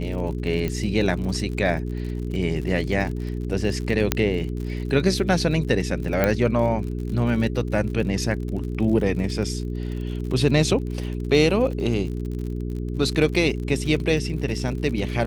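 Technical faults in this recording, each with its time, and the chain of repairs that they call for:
crackle 55 per s -31 dBFS
hum 60 Hz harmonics 7 -28 dBFS
0.68 s: pop -14 dBFS
4.12 s: pop -2 dBFS
6.24 s: pop -7 dBFS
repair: de-click; de-hum 60 Hz, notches 7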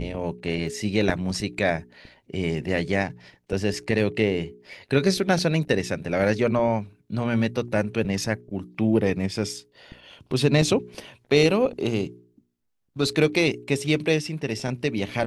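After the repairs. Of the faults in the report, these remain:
0.68 s: pop

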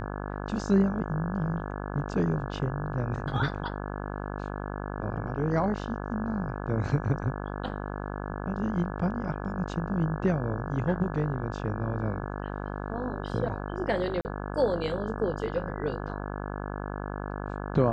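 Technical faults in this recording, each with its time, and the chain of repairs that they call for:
buzz 50 Hz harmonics 34 -35 dBFS
14.21–14.25 s: dropout 39 ms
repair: de-hum 50 Hz, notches 34; interpolate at 14.21 s, 39 ms

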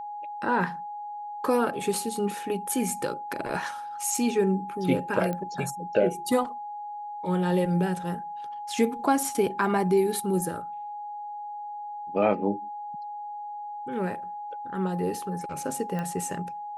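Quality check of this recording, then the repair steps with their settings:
whine 830 Hz -34 dBFS
5.33 s: pop -19 dBFS
15.99 s: pop -20 dBFS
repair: de-click; band-stop 830 Hz, Q 30

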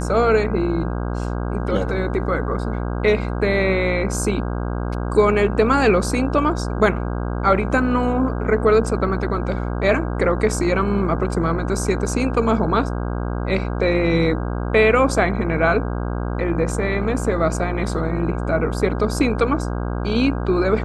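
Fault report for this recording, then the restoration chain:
buzz 60 Hz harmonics 27 -24 dBFS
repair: de-hum 60 Hz, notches 27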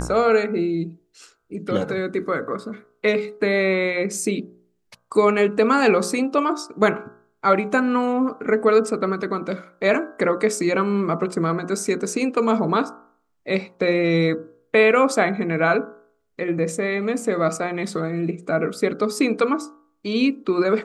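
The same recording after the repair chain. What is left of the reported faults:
nothing left

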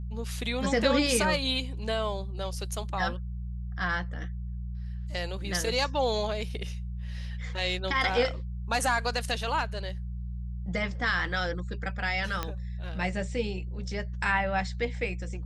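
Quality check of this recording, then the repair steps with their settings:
hum 60 Hz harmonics 3 -35 dBFS
12.43 s: pop -15 dBFS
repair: de-click; de-hum 60 Hz, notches 3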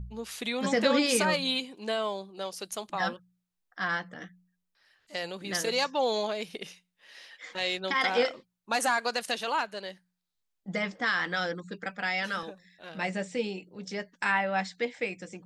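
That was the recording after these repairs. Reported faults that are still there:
12.43 s: pop

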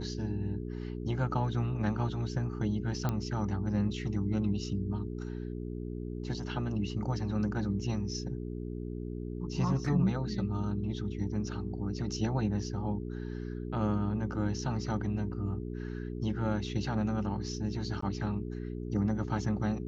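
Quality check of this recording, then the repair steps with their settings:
hum 60 Hz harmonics 7 -38 dBFS
3.09 s: pop -18 dBFS
18.01–18.02 s: dropout 14 ms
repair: de-click; de-hum 60 Hz, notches 7; interpolate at 18.01 s, 14 ms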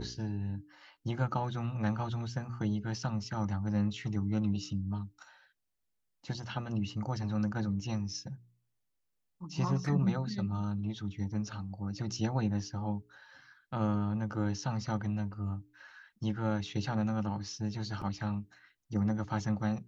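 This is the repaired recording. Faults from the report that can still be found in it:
nothing left

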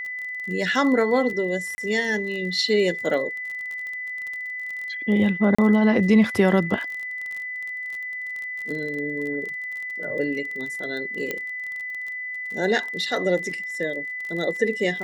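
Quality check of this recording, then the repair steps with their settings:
crackle 29 per s -30 dBFS
whine 2 kHz -29 dBFS
1.75–1.78 s: dropout 30 ms
5.55–5.58 s: dropout 35 ms
11.31 s: pop -12 dBFS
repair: de-click; band-stop 2 kHz, Q 30; interpolate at 1.75 s, 30 ms; interpolate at 5.55 s, 35 ms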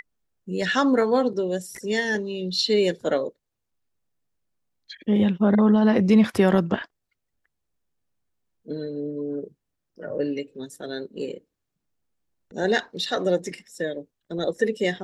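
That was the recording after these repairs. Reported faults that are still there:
nothing left

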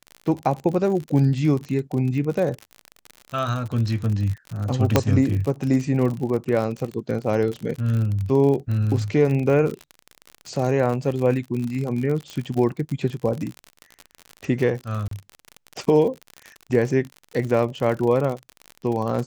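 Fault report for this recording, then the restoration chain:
crackle 55 per s -27 dBFS
4.96 s: pop -1 dBFS
15.08–15.11 s: dropout 33 ms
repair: de-click; interpolate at 15.08 s, 33 ms

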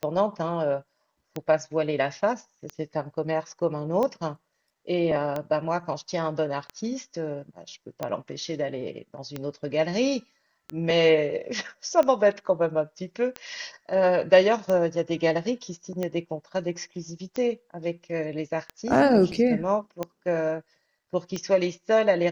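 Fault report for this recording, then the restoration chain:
tick 45 rpm -16 dBFS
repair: de-click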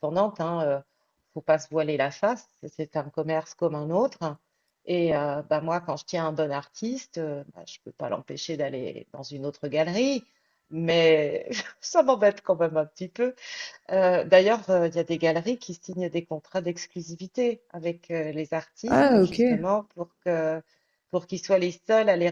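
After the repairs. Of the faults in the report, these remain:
nothing left

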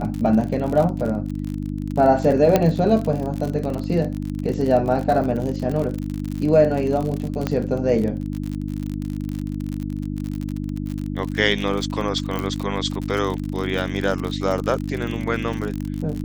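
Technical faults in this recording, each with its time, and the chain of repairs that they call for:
crackle 51 per s -25 dBFS
hum 50 Hz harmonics 6 -27 dBFS
2.56 s: pop -3 dBFS
7.47 s: pop -9 dBFS
12.39 s: pop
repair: de-click; de-hum 50 Hz, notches 6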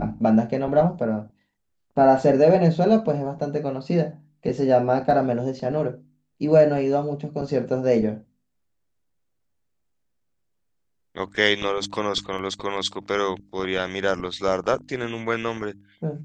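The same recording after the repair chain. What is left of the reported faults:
12.39 s: pop

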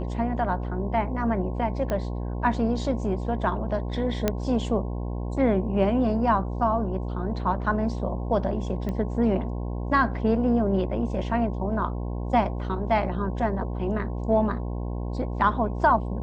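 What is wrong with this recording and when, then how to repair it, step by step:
buzz 60 Hz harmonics 18 -30 dBFS
1.90 s: pop -16 dBFS
4.28 s: pop -8 dBFS
8.89 s: pop -20 dBFS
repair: de-click; de-hum 60 Hz, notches 18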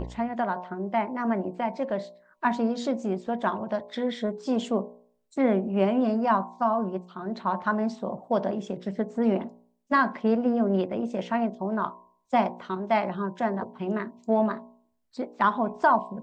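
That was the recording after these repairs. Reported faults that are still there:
nothing left

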